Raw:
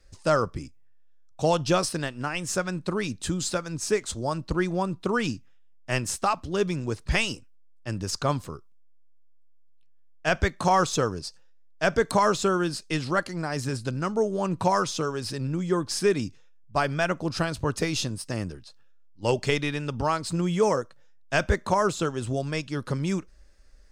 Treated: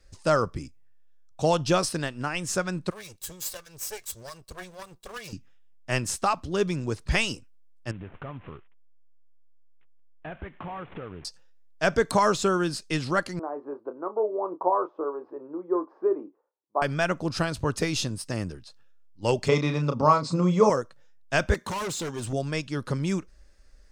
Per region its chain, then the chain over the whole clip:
2.9–5.33 minimum comb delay 1.8 ms + pre-emphasis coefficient 0.8
7.91–11.25 CVSD 16 kbps + compressor 4:1, threshold -36 dBFS
13.39–16.82 Chebyshev band-pass 330–1100 Hz, order 3 + doubler 28 ms -10.5 dB
19.48–20.7 speaker cabinet 130–6700 Hz, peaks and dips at 150 Hz +7 dB, 250 Hz +5 dB, 540 Hz +9 dB, 1100 Hz +10 dB, 1700 Hz -9 dB, 3000 Hz -9 dB + doubler 33 ms -7 dB
21.54–22.33 high shelf 3100 Hz +6.5 dB + notch comb 660 Hz + overloaded stage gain 29 dB
whole clip: dry

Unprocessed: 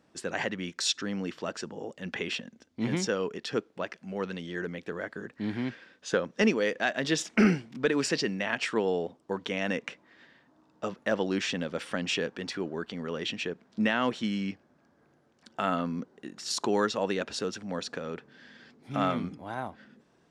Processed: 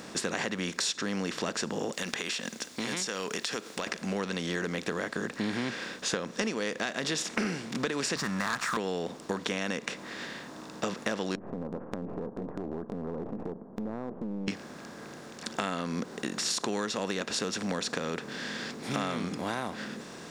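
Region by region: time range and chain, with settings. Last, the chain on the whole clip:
1.93–3.87 tilt +3.5 dB/oct + compressor, threshold -41 dBFS
8.16–8.77 EQ curve 150 Hz 0 dB, 450 Hz -23 dB, 1200 Hz +12 dB, 2900 Hz -21 dB, 8300 Hz -7 dB + sample leveller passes 2
11.35–14.48 half-wave gain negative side -12 dB + Bessel low-pass 500 Hz, order 8 + compressor, threshold -42 dBFS
whole clip: per-bin compression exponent 0.6; high shelf 4500 Hz +9 dB; compressor, threshold -28 dBFS

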